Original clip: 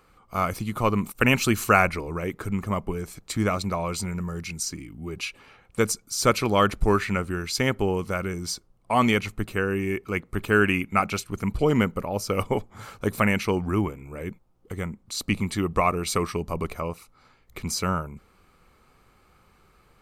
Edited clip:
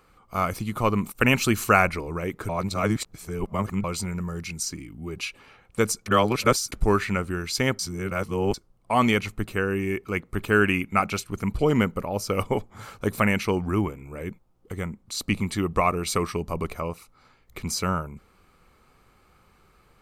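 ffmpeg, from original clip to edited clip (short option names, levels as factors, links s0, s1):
-filter_complex "[0:a]asplit=7[s0][s1][s2][s3][s4][s5][s6];[s0]atrim=end=2.492[s7];[s1]atrim=start=2.488:end=3.842,asetpts=PTS-STARTPTS,areverse[s8];[s2]atrim=start=3.838:end=6.062[s9];[s3]atrim=start=6.058:end=6.722,asetpts=PTS-STARTPTS,areverse[s10];[s4]atrim=start=6.718:end=7.792[s11];[s5]atrim=start=7.788:end=8.542,asetpts=PTS-STARTPTS,areverse[s12];[s6]atrim=start=8.538[s13];[s7][s8]acrossfade=d=0.004:c1=hsin:c2=hsin[s14];[s14][s9]acrossfade=d=0.004:c1=hsin:c2=hsin[s15];[s15][s10]acrossfade=d=0.004:c1=hsin:c2=hsin[s16];[s16][s11]acrossfade=d=0.004:c1=hsin:c2=hsin[s17];[s17][s12]acrossfade=d=0.004:c1=hsin:c2=hsin[s18];[s18][s13]acrossfade=d=0.004:c1=hsin:c2=hsin"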